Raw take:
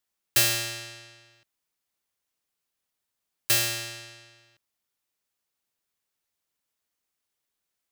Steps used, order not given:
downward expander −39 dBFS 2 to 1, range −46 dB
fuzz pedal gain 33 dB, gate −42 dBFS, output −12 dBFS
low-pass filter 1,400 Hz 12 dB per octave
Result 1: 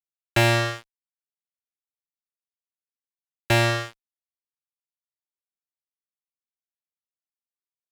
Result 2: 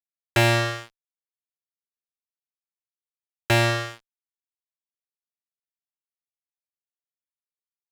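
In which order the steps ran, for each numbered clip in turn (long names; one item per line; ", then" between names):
low-pass filter, then downward expander, then fuzz pedal
downward expander, then low-pass filter, then fuzz pedal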